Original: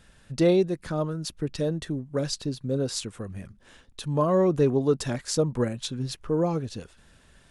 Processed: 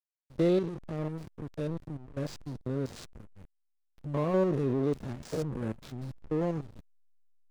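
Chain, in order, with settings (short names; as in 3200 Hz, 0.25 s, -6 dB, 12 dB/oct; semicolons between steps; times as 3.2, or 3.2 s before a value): stepped spectrum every 0.1 s; backlash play -27.5 dBFS; gain -3.5 dB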